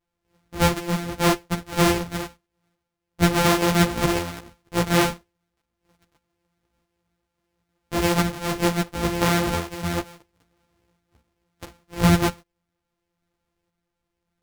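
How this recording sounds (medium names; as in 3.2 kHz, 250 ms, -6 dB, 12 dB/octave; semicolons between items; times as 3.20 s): a buzz of ramps at a fixed pitch in blocks of 256 samples; tremolo saw up 0.73 Hz, depth 35%; a shimmering, thickened sound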